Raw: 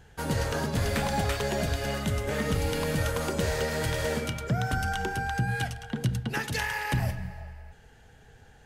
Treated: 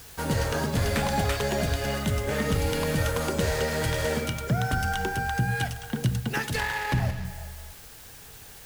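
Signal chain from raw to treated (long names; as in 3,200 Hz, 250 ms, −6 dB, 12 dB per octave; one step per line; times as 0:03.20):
in parallel at −11.5 dB: bit-depth reduction 6 bits, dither triangular
0:06.55–0:07.25: on the sum: windowed peak hold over 5 samples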